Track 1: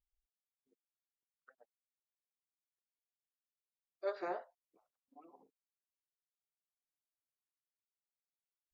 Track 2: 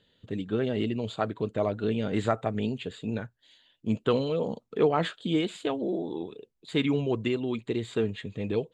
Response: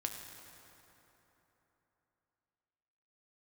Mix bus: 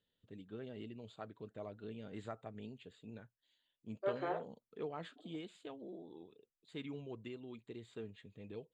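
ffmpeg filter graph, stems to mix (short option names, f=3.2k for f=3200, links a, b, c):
-filter_complex "[0:a]afwtdn=0.002,volume=1dB[a];[1:a]volume=-19.5dB[b];[a][b]amix=inputs=2:normalize=0"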